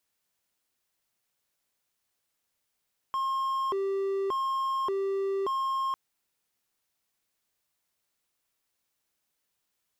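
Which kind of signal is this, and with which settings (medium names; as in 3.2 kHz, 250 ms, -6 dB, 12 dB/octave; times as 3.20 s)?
siren hi-lo 391–1070 Hz 0.86 per s triangle -24.5 dBFS 2.80 s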